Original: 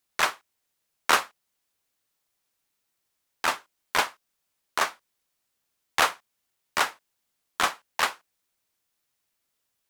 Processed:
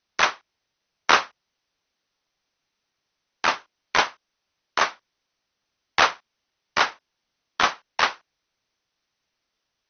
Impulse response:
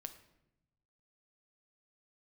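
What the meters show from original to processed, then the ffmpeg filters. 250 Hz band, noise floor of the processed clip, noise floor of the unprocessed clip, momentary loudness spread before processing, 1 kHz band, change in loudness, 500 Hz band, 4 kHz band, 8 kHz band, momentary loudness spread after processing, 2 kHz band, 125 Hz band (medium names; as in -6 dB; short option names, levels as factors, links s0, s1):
+4.0 dB, -81 dBFS, -79 dBFS, 10 LU, +4.0 dB, +4.0 dB, +4.0 dB, +4.0 dB, -1.0 dB, 10 LU, +4.0 dB, +4.0 dB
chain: -af "volume=1.58" -ar 44100 -c:a ac3 -b:a 48k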